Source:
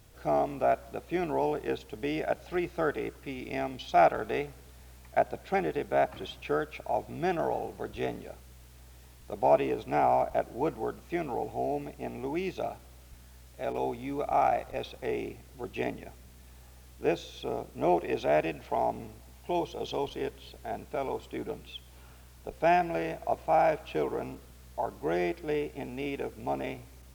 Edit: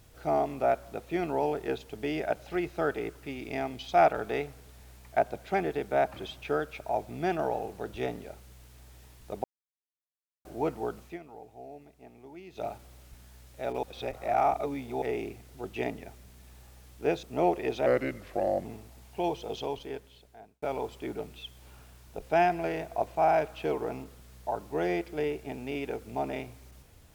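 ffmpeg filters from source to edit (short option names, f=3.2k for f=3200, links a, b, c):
-filter_complex "[0:a]asplit=11[a][b][c][d][e][f][g][h][i][j][k];[a]atrim=end=9.44,asetpts=PTS-STARTPTS,afade=t=out:st=9.436:d=0.004:c=hsin[l];[b]atrim=start=9.44:end=10.45,asetpts=PTS-STARTPTS,volume=0[m];[c]atrim=start=10.45:end=11.19,asetpts=PTS-STARTPTS,afade=t=in:d=0.004:c=hsin,afade=t=out:st=0.57:d=0.17:silence=0.188365[n];[d]atrim=start=11.19:end=12.5,asetpts=PTS-STARTPTS,volume=-14.5dB[o];[e]atrim=start=12.5:end=13.832,asetpts=PTS-STARTPTS,afade=t=in:d=0.17:silence=0.188365[p];[f]atrim=start=13.828:end=15.022,asetpts=PTS-STARTPTS,areverse[q];[g]atrim=start=15.018:end=17.232[r];[h]atrim=start=17.678:end=18.314[s];[i]atrim=start=18.31:end=18.96,asetpts=PTS-STARTPTS,asetrate=36162,aresample=44100,atrim=end_sample=34957,asetpts=PTS-STARTPTS[t];[j]atrim=start=18.956:end=20.93,asetpts=PTS-STARTPTS,afade=t=out:st=0.794:d=1.18[u];[k]atrim=start=20.93,asetpts=PTS-STARTPTS,afade=t=in:d=0.004:c=hsin[v];[l][m][n][o][p]concat=n=5:v=0:a=1[w];[w][q]acrossfade=d=0.004:c1=hsin:c2=hsin[x];[x][r]acrossfade=d=0.004:c1=hsin:c2=hsin[y];[y][s]acrossfade=d=0.004:c1=hsin:c2=hsin[z];[z][t]acrossfade=d=0.004:c1=hsin:c2=hsin[aa];[u][v]concat=n=2:v=0:a=1[ab];[aa][ab]acrossfade=d=0.004:c1=hsin:c2=hsin"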